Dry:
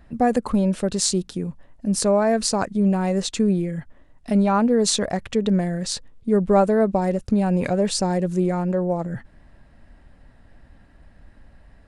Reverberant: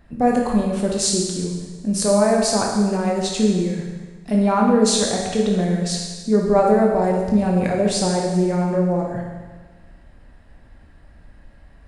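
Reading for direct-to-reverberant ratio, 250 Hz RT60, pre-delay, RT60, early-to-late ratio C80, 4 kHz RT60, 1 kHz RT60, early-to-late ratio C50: −1.0 dB, 1.4 s, 16 ms, 1.4 s, 4.0 dB, 1.4 s, 1.4 s, 2.0 dB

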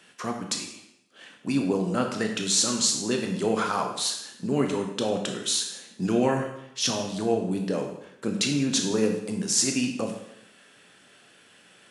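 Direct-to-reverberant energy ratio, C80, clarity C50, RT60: 2.5 dB, 8.0 dB, 6.0 dB, 0.80 s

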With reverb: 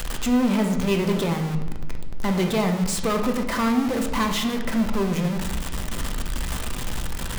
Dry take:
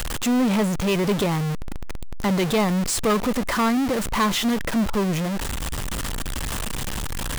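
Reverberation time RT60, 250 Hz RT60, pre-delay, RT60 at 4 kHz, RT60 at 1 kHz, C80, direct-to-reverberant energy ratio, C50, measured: 1.0 s, 1.5 s, 4 ms, 0.75 s, 0.95 s, 10.0 dB, 3.5 dB, 7.0 dB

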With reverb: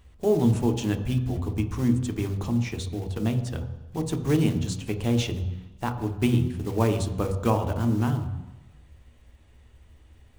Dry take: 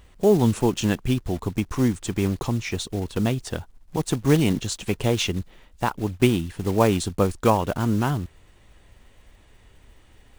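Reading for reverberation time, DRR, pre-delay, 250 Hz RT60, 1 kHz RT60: 1.0 s, 6.0 dB, 3 ms, 1.0 s, 1.1 s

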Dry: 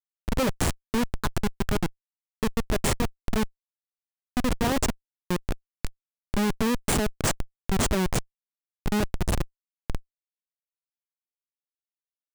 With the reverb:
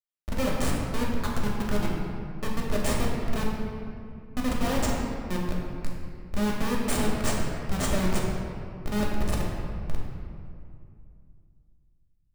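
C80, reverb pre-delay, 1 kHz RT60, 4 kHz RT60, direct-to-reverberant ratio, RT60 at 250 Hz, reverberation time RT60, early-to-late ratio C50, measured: 2.0 dB, 3 ms, 2.3 s, 1.4 s, −3.5 dB, 3.1 s, 2.4 s, 0.5 dB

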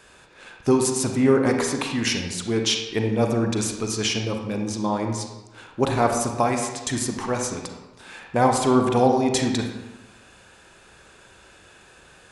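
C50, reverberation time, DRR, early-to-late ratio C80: 4.5 dB, 1.1 s, 3.0 dB, 6.5 dB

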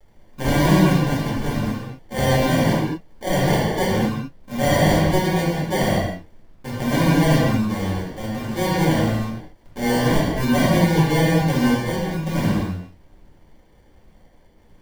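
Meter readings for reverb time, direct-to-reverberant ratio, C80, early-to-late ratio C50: non-exponential decay, −8.5 dB, 1.0 dB, −1.5 dB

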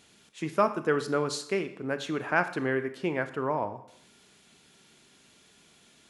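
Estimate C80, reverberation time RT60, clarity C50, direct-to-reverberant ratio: 15.5 dB, 0.70 s, 13.0 dB, 10.0 dB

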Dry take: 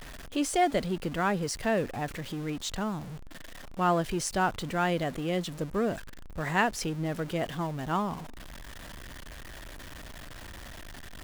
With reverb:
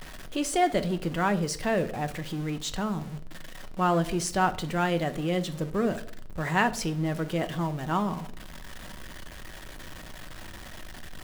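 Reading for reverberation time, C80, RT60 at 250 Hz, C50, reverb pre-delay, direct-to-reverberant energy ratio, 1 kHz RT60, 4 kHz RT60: 0.60 s, 20.0 dB, 0.85 s, 16.5 dB, 5 ms, 9.0 dB, 0.50 s, 0.40 s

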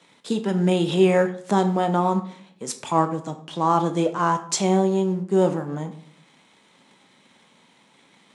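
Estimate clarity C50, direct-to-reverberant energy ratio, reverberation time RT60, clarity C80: 12.0 dB, 7.0 dB, 0.60 s, 15.5 dB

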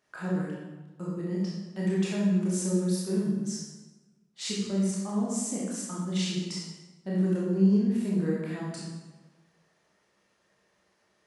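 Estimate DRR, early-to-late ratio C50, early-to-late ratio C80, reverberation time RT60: −6.0 dB, −1.0 dB, 2.5 dB, 1.2 s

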